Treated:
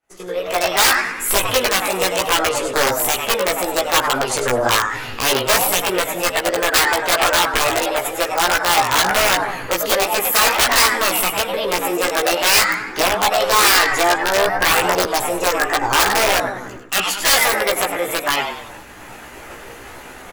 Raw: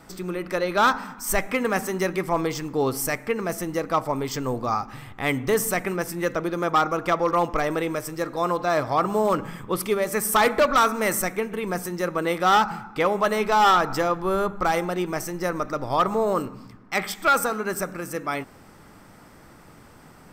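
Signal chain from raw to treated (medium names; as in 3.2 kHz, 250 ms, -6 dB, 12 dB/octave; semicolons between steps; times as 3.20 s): on a send: frequency-shifting echo 99 ms, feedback 34%, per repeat +100 Hz, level -8 dB; on the sum: level rider gain up to 12 dB; formant shift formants +5 st; in parallel at +1.5 dB: compression 10:1, threshold -25 dBFS, peak gain reduction 20.5 dB; on the sum: integer overflow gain 4 dB; bass shelf 230 Hz -5 dB; chorus voices 4, 0.26 Hz, delay 16 ms, depth 1.3 ms; peaking EQ 160 Hz -10.5 dB 0.96 oct; expander -32 dBFS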